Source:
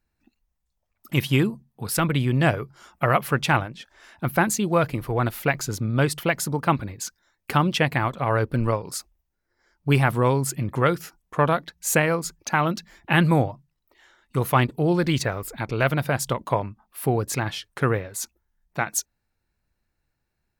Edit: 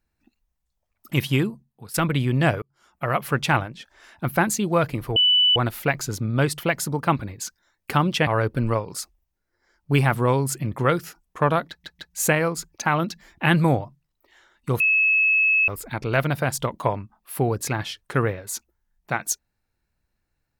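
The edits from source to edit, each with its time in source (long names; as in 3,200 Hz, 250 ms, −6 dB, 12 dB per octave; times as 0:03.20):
0:01.27–0:01.94: fade out linear, to −14 dB
0:02.62–0:03.37: fade in
0:05.16: insert tone 2,980 Hz −14 dBFS 0.40 s
0:07.87–0:08.24: remove
0:11.66: stutter 0.15 s, 3 plays
0:14.47–0:15.35: beep over 2,590 Hz −15.5 dBFS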